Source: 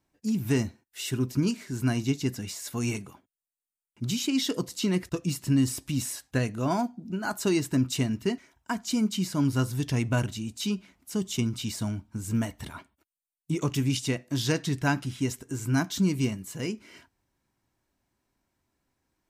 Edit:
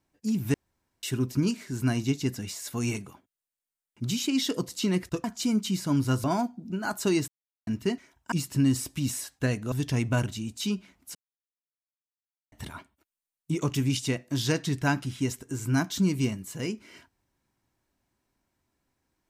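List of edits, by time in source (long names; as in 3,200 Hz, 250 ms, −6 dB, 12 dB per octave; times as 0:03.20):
0:00.54–0:01.03: fill with room tone
0:05.24–0:06.64: swap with 0:08.72–0:09.72
0:07.68–0:08.07: silence
0:11.15–0:12.52: silence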